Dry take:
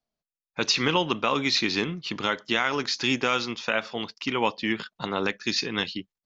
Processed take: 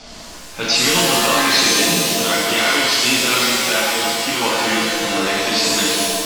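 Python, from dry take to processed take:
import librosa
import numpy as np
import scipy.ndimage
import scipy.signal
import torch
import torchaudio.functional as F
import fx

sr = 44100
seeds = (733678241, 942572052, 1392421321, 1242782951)

y = x + 0.5 * 10.0 ** (-32.5 / 20.0) * np.sign(x)
y = scipy.signal.sosfilt(scipy.signal.butter(4, 6300.0, 'lowpass', fs=sr, output='sos'), y)
y = fx.high_shelf(y, sr, hz=3300.0, db=7.5)
y = fx.rev_shimmer(y, sr, seeds[0], rt60_s=1.8, semitones=7, shimmer_db=-2, drr_db=-7.0)
y = y * librosa.db_to_amplitude(-3.5)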